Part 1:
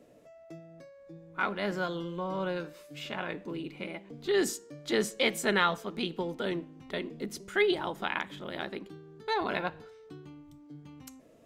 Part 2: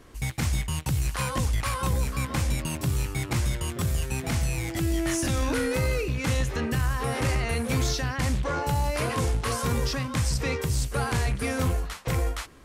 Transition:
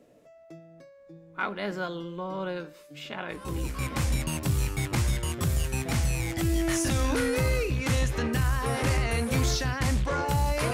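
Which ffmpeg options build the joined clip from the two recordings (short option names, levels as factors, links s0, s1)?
-filter_complex "[0:a]apad=whole_dur=10.73,atrim=end=10.73,atrim=end=4.34,asetpts=PTS-STARTPTS[s0];[1:a]atrim=start=1.66:end=9.11,asetpts=PTS-STARTPTS[s1];[s0][s1]acrossfade=d=1.06:c1=qsin:c2=qsin"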